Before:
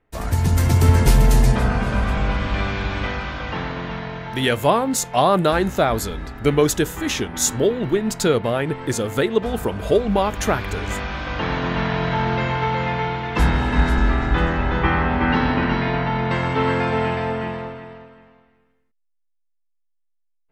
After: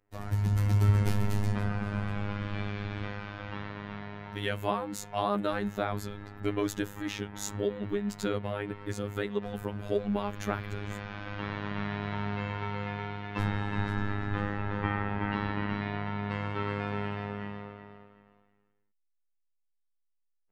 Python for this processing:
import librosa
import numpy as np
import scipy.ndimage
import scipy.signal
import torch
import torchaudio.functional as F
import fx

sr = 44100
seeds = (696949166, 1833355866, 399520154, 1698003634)

y = fx.peak_eq(x, sr, hz=9100.0, db=-10.0, octaves=2.2)
y = fx.robotise(y, sr, hz=102.0)
y = fx.dynamic_eq(y, sr, hz=610.0, q=0.76, threshold_db=-34.0, ratio=4.0, max_db=-4)
y = y * 10.0 ** (-7.5 / 20.0)